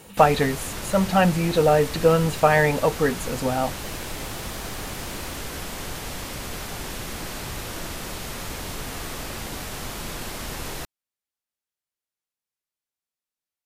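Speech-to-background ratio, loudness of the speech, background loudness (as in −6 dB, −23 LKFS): 11.5 dB, −21.0 LKFS, −32.5 LKFS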